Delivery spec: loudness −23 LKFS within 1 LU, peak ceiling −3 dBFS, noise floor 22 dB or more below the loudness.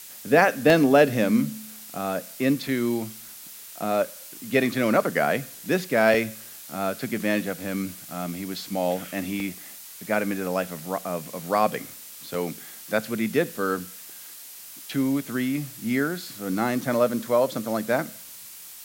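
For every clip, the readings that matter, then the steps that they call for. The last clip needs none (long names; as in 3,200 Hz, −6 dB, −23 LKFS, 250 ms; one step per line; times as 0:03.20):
number of dropouts 6; longest dropout 2.3 ms; background noise floor −43 dBFS; target noise floor −47 dBFS; integrated loudness −25.0 LKFS; sample peak −3.5 dBFS; target loudness −23.0 LKFS
→ repair the gap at 0:00.70/0:02.68/0:06.14/0:09.40/0:12.34/0:16.81, 2.3 ms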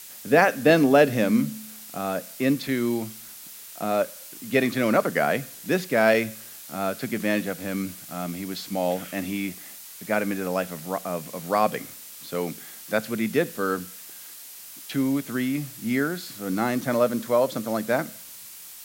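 number of dropouts 0; background noise floor −43 dBFS; target noise floor −47 dBFS
→ broadband denoise 6 dB, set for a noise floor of −43 dBFS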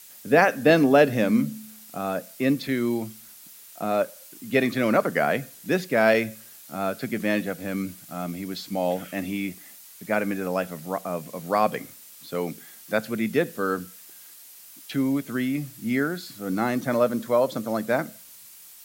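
background noise floor −47 dBFS; integrated loudness −25.0 LKFS; sample peak −3.5 dBFS; target loudness −23.0 LKFS
→ level +2 dB
brickwall limiter −3 dBFS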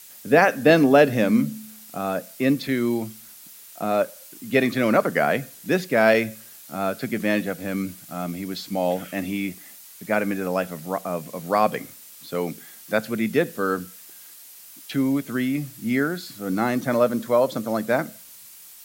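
integrated loudness −23.0 LKFS; sample peak −3.0 dBFS; background noise floor −45 dBFS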